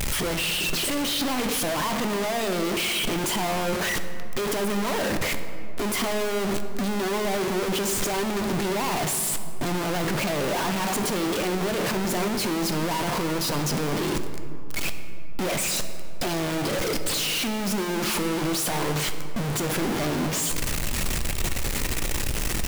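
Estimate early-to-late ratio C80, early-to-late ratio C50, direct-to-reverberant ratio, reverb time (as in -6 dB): 10.0 dB, 9.0 dB, 7.5 dB, 2.6 s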